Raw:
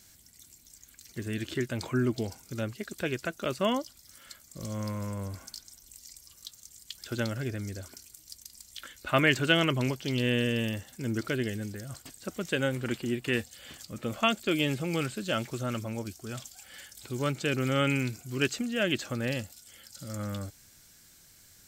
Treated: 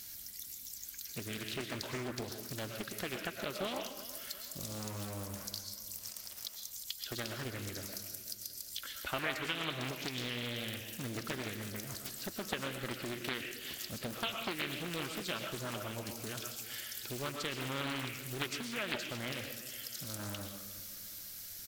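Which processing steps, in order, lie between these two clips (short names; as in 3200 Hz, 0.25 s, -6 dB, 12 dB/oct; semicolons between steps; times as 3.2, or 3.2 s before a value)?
pre-emphasis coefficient 0.8; harmonic-percussive split harmonic -5 dB; bell 7900 Hz -10.5 dB 0.64 oct; compressor 3:1, threshold -57 dBFS, peak gain reduction 20 dB; 5.98–6.56 sample gate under -59.5 dBFS; feedback echo 0.367 s, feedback 46%, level -15 dB; on a send at -4 dB: reverb RT60 0.55 s, pre-delay 80 ms; on the sum: Doppler distortion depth 0.7 ms; gain +16.5 dB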